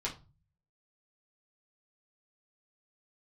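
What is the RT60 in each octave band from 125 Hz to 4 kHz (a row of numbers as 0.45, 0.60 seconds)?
0.75, 0.55, 0.30, 0.30, 0.25, 0.25 seconds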